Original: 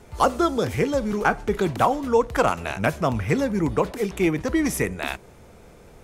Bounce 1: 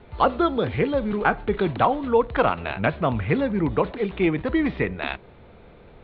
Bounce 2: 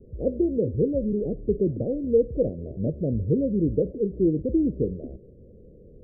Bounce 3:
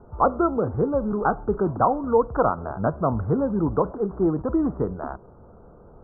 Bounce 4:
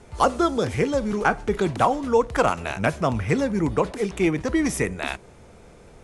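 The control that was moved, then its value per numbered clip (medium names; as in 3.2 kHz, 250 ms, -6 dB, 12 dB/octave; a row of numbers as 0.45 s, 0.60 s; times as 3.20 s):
steep low-pass, frequency: 4.1 kHz, 550 Hz, 1.4 kHz, 11 kHz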